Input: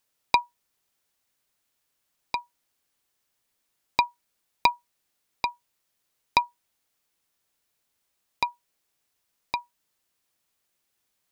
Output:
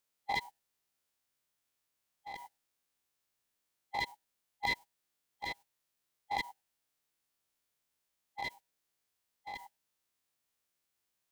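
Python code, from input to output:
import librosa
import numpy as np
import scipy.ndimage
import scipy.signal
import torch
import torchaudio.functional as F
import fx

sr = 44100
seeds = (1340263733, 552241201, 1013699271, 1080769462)

y = fx.spec_steps(x, sr, hold_ms=100)
y = fx.formant_shift(y, sr, semitones=-3)
y = y * 10.0 ** (-5.5 / 20.0)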